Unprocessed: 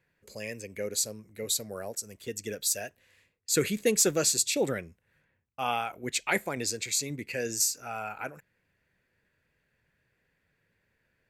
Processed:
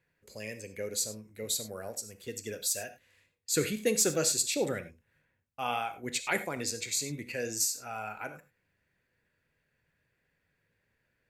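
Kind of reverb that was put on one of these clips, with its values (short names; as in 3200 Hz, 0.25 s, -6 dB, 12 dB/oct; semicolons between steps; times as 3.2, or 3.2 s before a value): non-linear reverb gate 0.12 s flat, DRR 9.5 dB; gain -3 dB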